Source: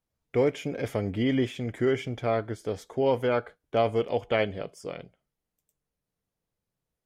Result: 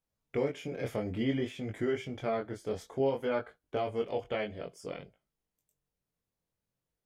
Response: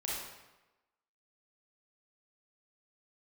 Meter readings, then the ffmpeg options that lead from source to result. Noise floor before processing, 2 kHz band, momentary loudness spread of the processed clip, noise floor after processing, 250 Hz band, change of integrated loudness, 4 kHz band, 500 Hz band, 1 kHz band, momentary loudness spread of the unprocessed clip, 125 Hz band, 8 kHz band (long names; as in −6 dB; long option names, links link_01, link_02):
below −85 dBFS, −6.5 dB, 8 LU, below −85 dBFS, −5.5 dB, −6.5 dB, −6.5 dB, −6.5 dB, −7.0 dB, 9 LU, −7.5 dB, can't be measured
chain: -af "alimiter=limit=-19dB:level=0:latency=1:release=470,flanger=delay=19.5:depth=4.1:speed=0.56"